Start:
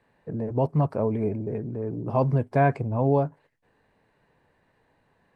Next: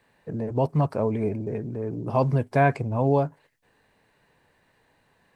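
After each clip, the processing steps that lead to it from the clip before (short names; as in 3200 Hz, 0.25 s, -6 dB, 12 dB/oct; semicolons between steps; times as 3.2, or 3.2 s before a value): high shelf 2200 Hz +10 dB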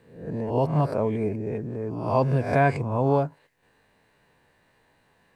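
spectral swells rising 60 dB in 0.55 s; gain -1 dB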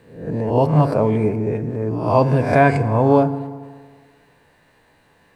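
FDN reverb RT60 1.7 s, low-frequency decay 0.85×, high-frequency decay 0.65×, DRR 11 dB; gain +7 dB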